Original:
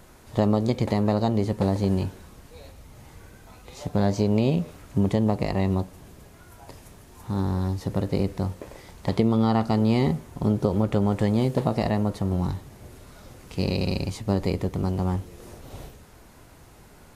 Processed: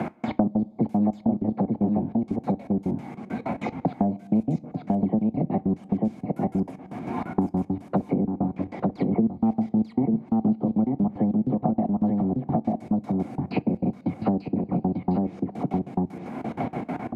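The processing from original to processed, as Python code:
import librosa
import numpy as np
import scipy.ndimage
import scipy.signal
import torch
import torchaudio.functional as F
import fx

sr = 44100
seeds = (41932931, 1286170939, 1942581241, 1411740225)

p1 = fx.spec_delay(x, sr, highs='early', ms=165)
p2 = fx.env_lowpass_down(p1, sr, base_hz=780.0, full_db=-21.5)
p3 = scipy.signal.sosfilt(scipy.signal.butter(4, 120.0, 'highpass', fs=sr, output='sos'), p2)
p4 = fx.high_shelf(p3, sr, hz=7800.0, db=-7.0)
p5 = fx.small_body(p4, sr, hz=(240.0, 730.0, 2200.0), ring_ms=20, db=13)
p6 = fx.step_gate(p5, sr, bpm=191, pattern='x..x.x.x..x.x', floor_db=-60.0, edge_ms=4.5)
p7 = p6 + fx.echo_single(p6, sr, ms=892, db=-4.0, dry=0)
p8 = fx.rev_double_slope(p7, sr, seeds[0], early_s=0.23, late_s=2.7, knee_db=-21, drr_db=15.5)
p9 = fx.band_squash(p8, sr, depth_pct=100)
y = F.gain(torch.from_numpy(p9), -7.0).numpy()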